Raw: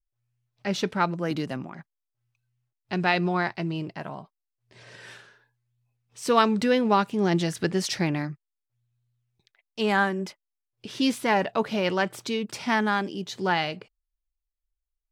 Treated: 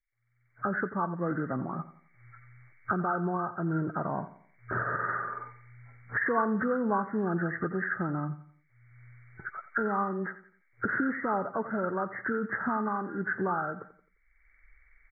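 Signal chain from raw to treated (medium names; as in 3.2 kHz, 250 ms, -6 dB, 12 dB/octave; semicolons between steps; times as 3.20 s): knee-point frequency compression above 1.1 kHz 4:1; recorder AGC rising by 32 dB/s; feedback delay 87 ms, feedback 39%, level -15 dB; trim -7.5 dB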